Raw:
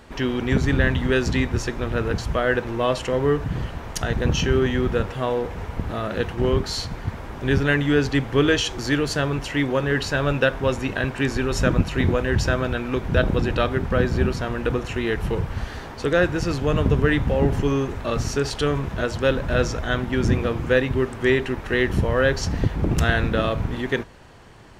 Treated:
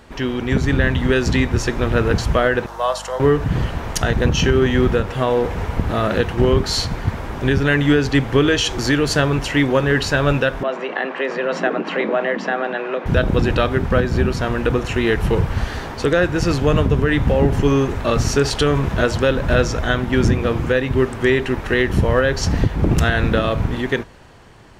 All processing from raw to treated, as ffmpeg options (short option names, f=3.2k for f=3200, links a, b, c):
-filter_complex "[0:a]asettb=1/sr,asplit=3[a][b][c];[a]atrim=end=2.664[d];[b]atrim=start=2.66:end=3.2,asetpts=PTS-STARTPTS,afade=t=in:d=0.004:c=qsin,afade=t=out:st=0.536:d=0.004:c=qsin,highpass=f=660:w=0.5412,highpass=f=660:w=1.3066,equalizer=f=2.4k:t=o:w=0.92:g=-14,aeval=exprs='val(0)+0.00501*(sin(2*PI*50*n/s)+sin(2*PI*2*50*n/s)/2+sin(2*PI*3*50*n/s)/3+sin(2*PI*4*50*n/s)/4+sin(2*PI*5*50*n/s)/5)':c=same[e];[c]atrim=start=3.196[f];[d][e]acrossfade=d=0.004:c1=hsin:c2=qsin[g];[g][f]acrossfade=d=0.004:c1=qsin:c2=hsin,asettb=1/sr,asplit=3[h][i][j];[h]atrim=end=10.634[k];[i]atrim=start=10.63:end=13.06,asetpts=PTS-STARTPTS,afade=t=in:d=0.004:c=qsin,afade=t=out:st=2.426:d=0.004:c=qsin,acompressor=threshold=-22dB:ratio=2.5:attack=3.2:release=140:knee=1:detection=peak,afreqshift=130,highpass=440,lowpass=2.5k[l];[j]atrim=start=13.056[m];[k][l]acrossfade=d=0.004:c1=hsin:c2=qsin[n];[n][m]acrossfade=d=0.004:c1=qsin:c2=hsin,dynaudnorm=f=100:g=21:m=11.5dB,alimiter=limit=-7dB:level=0:latency=1:release=233,volume=1.5dB"